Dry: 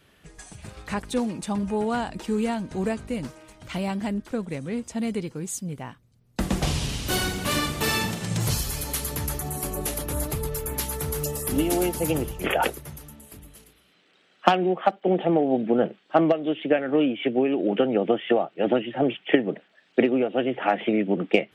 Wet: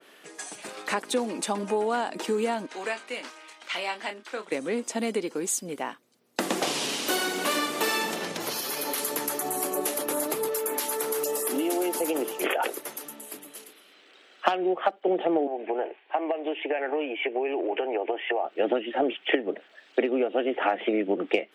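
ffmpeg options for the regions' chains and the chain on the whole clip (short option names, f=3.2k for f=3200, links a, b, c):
-filter_complex "[0:a]asettb=1/sr,asplit=3[a][b][c];[a]atrim=end=2.664[d];[b]atrim=start=2.66:end=4.52,asetpts=PTS-STARTPTS,afade=t=in:d=0.004:c=qsin,afade=t=out:st=1.856:d=0.004:c=qsin,bandpass=f=2.6k:t=q:w=0.65,asplit=2[e][f];[f]adelay=28,volume=-8.5dB[g];[e][g]amix=inputs=2:normalize=0,atrim=end_sample=82026[h];[c]atrim=start=4.516[i];[d][h]acrossfade=d=0.004:c1=hsin:c2=qsin[j];[j][i]acrossfade=d=0.004:c1=qsin:c2=hsin,asettb=1/sr,asplit=3[k][l][m];[k]atrim=end=8.164[n];[l]atrim=start=8.16:end=8.98,asetpts=PTS-STARTPTS,afade=t=in:d=0.004:c=qsin,afade=t=out:st=0.816:d=0.004:c=qsin,equalizer=f=8k:t=o:w=0.45:g=-11,acompressor=threshold=-27dB:ratio=4:attack=3.2:release=140:knee=1:detection=peak[o];[m]atrim=start=8.976[p];[n][o]acrossfade=d=0.004:c1=hsin:c2=qsin[q];[q][p]acrossfade=d=0.004:c1=qsin:c2=hsin,asettb=1/sr,asplit=3[r][s][t];[r]atrim=end=10.484[u];[s]atrim=start=10.48:end=13.05,asetpts=PTS-STARTPTS,afade=t=in:d=0.004:c=qsin,afade=t=out:st=2.566:d=0.004:c=qsin,highpass=220,acompressor=threshold=-26dB:ratio=3:attack=3.2:release=140:knee=1:detection=peak[v];[t]atrim=start=13.046[w];[u][v]acrossfade=d=0.004:c1=hsin:c2=qsin[x];[x][w]acrossfade=d=0.004:c1=qsin:c2=hsin,asettb=1/sr,asplit=3[y][z][aa];[y]atrim=end=15.474[ab];[z]atrim=start=15.47:end=18.45,asetpts=PTS-STARTPTS,afade=t=in:d=0.004:c=qsin,afade=t=out:st=2.976:d=0.004:c=qsin,acompressor=threshold=-23dB:ratio=4:attack=3.2:release=140:knee=1:detection=peak,highpass=f=390:w=0.5412,highpass=f=390:w=1.3066,equalizer=f=530:t=q:w=4:g=-7,equalizer=f=870:t=q:w=4:g=5,equalizer=f=1.3k:t=q:w=4:g=-10,equalizer=f=2.5k:t=q:w=4:g=4,lowpass=f=2.6k:w=0.5412,lowpass=f=2.6k:w=1.3066[ac];[aa]atrim=start=18.446[ad];[ab][ac]acrossfade=d=0.004:c1=hsin:c2=qsin[ae];[ae][ad]acrossfade=d=0.004:c1=qsin:c2=hsin,highpass=f=290:w=0.5412,highpass=f=290:w=1.3066,acompressor=threshold=-31dB:ratio=3,adynamicequalizer=threshold=0.00631:dfrequency=1900:dqfactor=0.7:tfrequency=1900:tqfactor=0.7:attack=5:release=100:ratio=0.375:range=1.5:mode=cutabove:tftype=highshelf,volume=7dB"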